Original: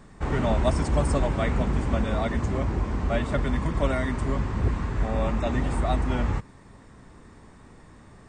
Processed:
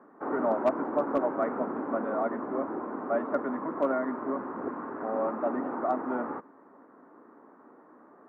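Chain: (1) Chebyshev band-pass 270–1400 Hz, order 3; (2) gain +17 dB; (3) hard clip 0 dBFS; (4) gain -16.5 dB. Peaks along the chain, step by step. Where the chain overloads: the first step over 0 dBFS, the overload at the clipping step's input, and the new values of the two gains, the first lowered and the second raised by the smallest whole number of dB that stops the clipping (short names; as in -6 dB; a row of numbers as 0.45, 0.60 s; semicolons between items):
-13.5, +3.5, 0.0, -16.5 dBFS; step 2, 3.5 dB; step 2 +13 dB, step 4 -12.5 dB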